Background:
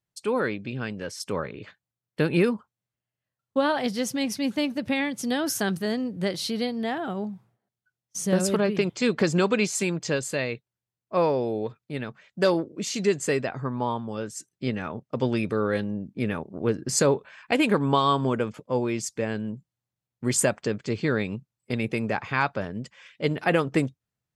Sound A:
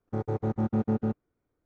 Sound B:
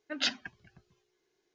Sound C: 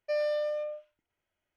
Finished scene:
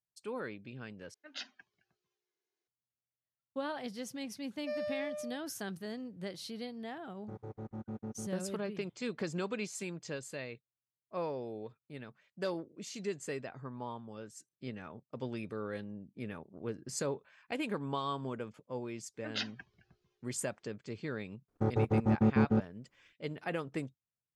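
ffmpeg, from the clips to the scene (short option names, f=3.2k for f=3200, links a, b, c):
-filter_complex "[2:a]asplit=2[a][b];[1:a]asplit=2[c][d];[0:a]volume=-14.5dB[e];[a]highpass=f=440:p=1[f];[b]lowpass=5.8k[g];[e]asplit=2[h][i];[h]atrim=end=1.144[j];[f]atrim=end=1.54,asetpts=PTS-STARTPTS,volume=-13.5dB[k];[i]atrim=start=2.676[l];[3:a]atrim=end=1.56,asetpts=PTS-STARTPTS,volume=-8dB,afade=t=in:d=0.004:c=hsin,afade=t=out:st=1.556:d=0.004:c=hsin,adelay=4580[m];[c]atrim=end=1.65,asetpts=PTS-STARTPTS,volume=-15.5dB,afade=t=in:d=0.004:c=hsin,afade=t=out:st=1.646:d=0.004:c=hsin,adelay=7150[n];[g]atrim=end=1.54,asetpts=PTS-STARTPTS,volume=-6.5dB,afade=t=in:d=0.004:c=hsin,afade=t=out:st=1.536:d=0.004:c=hsin,adelay=19140[o];[d]atrim=end=1.65,asetpts=PTS-STARTPTS,afade=t=in:d=0.004:c=hsin,afade=t=out:st=1.646:d=0.004:c=hsin,adelay=947268S[p];[j][k]acrossfade=d=0.004:c1=hsin:c2=hsin[q];[q][l]acrossfade=d=0.004:c1=hsin:c2=hsin[r];[r][m][n][o][p]amix=inputs=5:normalize=0"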